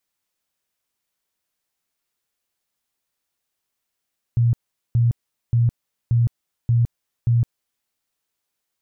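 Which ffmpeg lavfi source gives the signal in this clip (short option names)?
-f lavfi -i "aevalsrc='0.211*sin(2*PI*118*mod(t,0.58))*lt(mod(t,0.58),19/118)':d=3.48:s=44100"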